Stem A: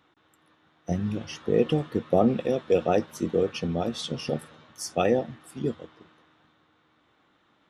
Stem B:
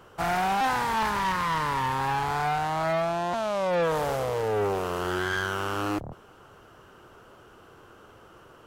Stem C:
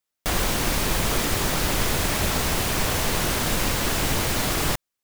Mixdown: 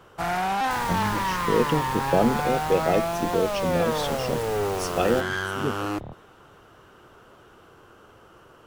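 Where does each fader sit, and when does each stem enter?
0.0, 0.0, −14.5 decibels; 0.00, 0.00, 0.45 seconds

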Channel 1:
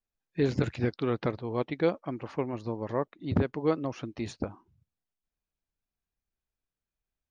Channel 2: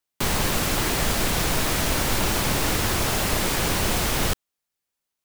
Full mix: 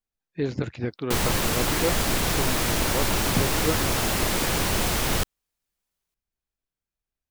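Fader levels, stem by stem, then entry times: −0.5, −1.0 decibels; 0.00, 0.90 seconds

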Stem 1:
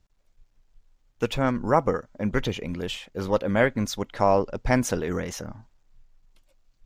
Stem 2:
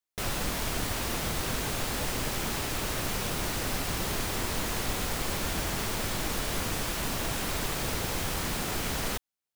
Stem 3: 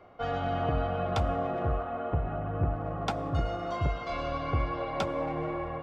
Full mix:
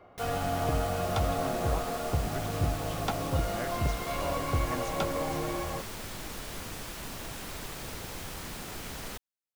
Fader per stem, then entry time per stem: −17.0, −8.5, −0.5 decibels; 0.00, 0.00, 0.00 seconds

